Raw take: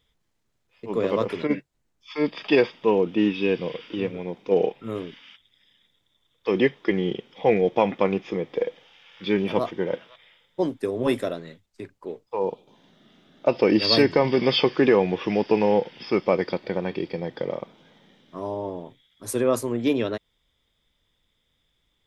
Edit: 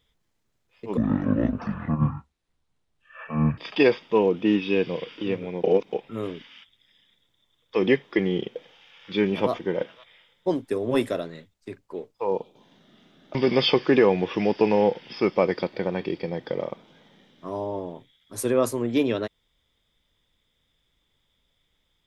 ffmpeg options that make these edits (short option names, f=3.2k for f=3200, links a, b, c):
-filter_complex "[0:a]asplit=7[a][b][c][d][e][f][g];[a]atrim=end=0.974[h];[b]atrim=start=0.97:end=2.3,asetpts=PTS-STARTPTS,asetrate=22491,aresample=44100[i];[c]atrim=start=2.296:end=4.362[j];[d]atrim=start=4.358:end=4.652,asetpts=PTS-STARTPTS,areverse[k];[e]atrim=start=4.648:end=7.282[l];[f]atrim=start=8.678:end=13.472[m];[g]atrim=start=14.248[n];[h][i]acrossfade=d=0.004:c1=hsin:c2=hsin[o];[o][j]acrossfade=d=0.004:c1=hsin:c2=hsin[p];[p][k]acrossfade=d=0.004:c1=hsin:c2=hsin[q];[q][l]acrossfade=d=0.004:c1=hsin:c2=hsin[r];[r][m]acrossfade=d=0.004:c1=hsin:c2=hsin[s];[s][n]acrossfade=d=0.004:c1=hsin:c2=hsin"